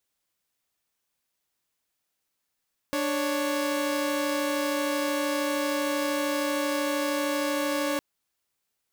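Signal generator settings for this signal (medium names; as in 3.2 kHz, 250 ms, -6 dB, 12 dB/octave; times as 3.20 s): chord D4/C#5 saw, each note -25.5 dBFS 5.06 s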